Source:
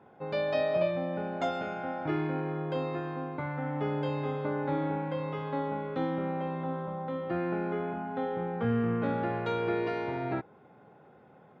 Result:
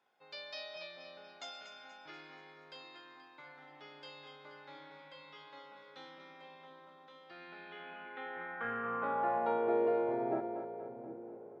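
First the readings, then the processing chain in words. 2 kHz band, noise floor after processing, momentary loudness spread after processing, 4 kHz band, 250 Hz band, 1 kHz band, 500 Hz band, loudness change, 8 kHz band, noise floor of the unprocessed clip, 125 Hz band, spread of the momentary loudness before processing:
-5.5 dB, -58 dBFS, 21 LU, -2.5 dB, -13.0 dB, -5.0 dB, -7.0 dB, -5.0 dB, no reading, -57 dBFS, -25.0 dB, 6 LU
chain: two-band feedback delay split 410 Hz, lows 744 ms, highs 239 ms, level -9 dB; band-pass sweep 5.2 kHz -> 540 Hz, 7.27–9.90 s; trim +4.5 dB

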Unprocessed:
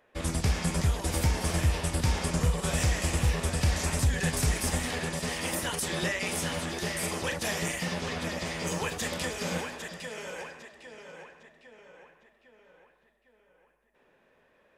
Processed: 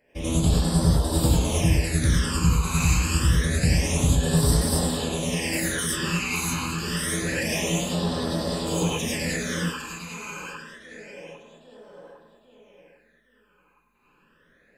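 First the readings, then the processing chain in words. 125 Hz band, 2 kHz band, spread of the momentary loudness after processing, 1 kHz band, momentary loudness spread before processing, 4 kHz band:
+6.5 dB, +3.5 dB, 14 LU, +3.0 dB, 11 LU, +5.0 dB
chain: gated-style reverb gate 130 ms rising, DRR -5.5 dB; phase shifter stages 12, 0.27 Hz, lowest notch 570–2300 Hz; trim +1.5 dB

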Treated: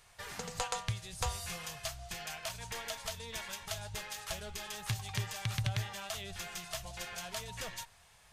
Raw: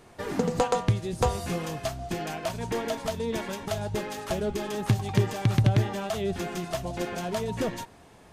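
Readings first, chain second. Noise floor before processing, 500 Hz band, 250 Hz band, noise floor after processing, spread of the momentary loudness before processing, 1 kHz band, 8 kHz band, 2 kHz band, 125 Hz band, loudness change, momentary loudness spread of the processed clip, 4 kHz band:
-53 dBFS, -17.5 dB, -20.5 dB, -62 dBFS, 8 LU, -11.0 dB, -0.5 dB, -4.5 dB, -13.0 dB, -10.5 dB, 6 LU, -2.0 dB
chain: amplifier tone stack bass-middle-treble 10-0-10

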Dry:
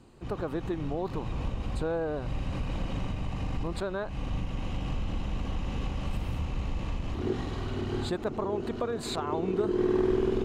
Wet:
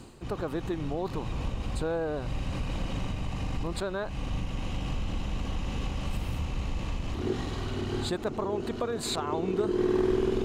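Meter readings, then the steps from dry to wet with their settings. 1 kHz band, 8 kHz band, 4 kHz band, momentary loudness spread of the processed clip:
+0.5 dB, +6.0 dB, +3.5 dB, 7 LU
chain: treble shelf 3.5 kHz +7 dB; reverse; upward compressor, threshold -30 dBFS; reverse

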